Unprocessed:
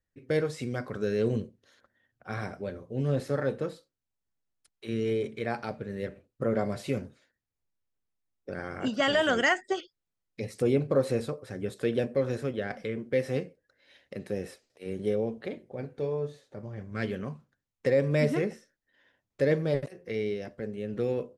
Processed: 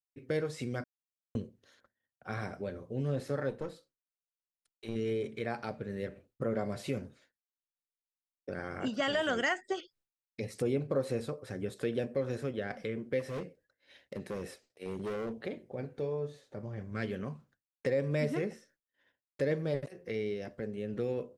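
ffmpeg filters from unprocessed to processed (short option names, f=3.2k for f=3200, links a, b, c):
-filter_complex "[0:a]asettb=1/sr,asplit=3[a][b][c];[a]atrim=end=3.504[d];[b]atrim=start=3.5:end=4.96,asetpts=PTS-STARTPTS,afade=t=in:d=0.004:c=qsin,afade=t=out:st=1.456:d=0.004:c=qsin,aeval=exprs='(tanh(17.8*val(0)+0.6)-tanh(0.6))/17.8':c=same[e];[c]atrim=start=4.956[f];[d][e]acrossfade=d=0.004:c1=hsin:c2=qsin[g];[g][f]acrossfade=d=0.004:c1=qsin:c2=hsin,asplit=3[h][i][j];[h]afade=t=out:st=13.19:d=0.02[k];[i]asoftclip=type=hard:threshold=-31.5dB,afade=t=in:st=13.19:d=0.02,afade=t=out:st=15.32:d=0.02[l];[j]afade=t=in:st=15.32:d=0.02[m];[k][l][m]amix=inputs=3:normalize=0,asplit=3[n][o][p];[n]atrim=end=0.84,asetpts=PTS-STARTPTS,afade=t=out:st=0.836:d=0.004:c=hsin[q];[o]atrim=start=0.84:end=1.35,asetpts=PTS-STARTPTS,volume=0[r];[p]atrim=start=1.35,asetpts=PTS-STARTPTS,afade=t=in:d=0.004:c=hsin[s];[q][r][s]concat=n=3:v=0:a=1,agate=range=-33dB:threshold=-59dB:ratio=3:detection=peak,acompressor=threshold=-38dB:ratio=1.5"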